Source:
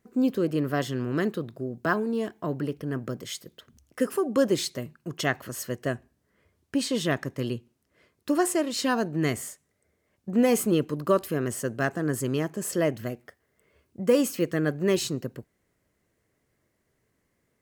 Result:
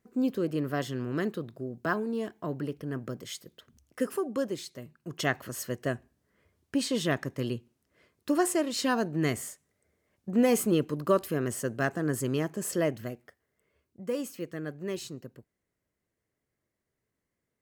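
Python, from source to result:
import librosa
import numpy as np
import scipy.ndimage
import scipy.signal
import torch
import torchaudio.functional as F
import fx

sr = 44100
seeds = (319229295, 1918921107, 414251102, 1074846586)

y = fx.gain(x, sr, db=fx.line((4.16, -4.0), (4.64, -12.0), (5.24, -2.0), (12.71, -2.0), (14.05, -11.0)))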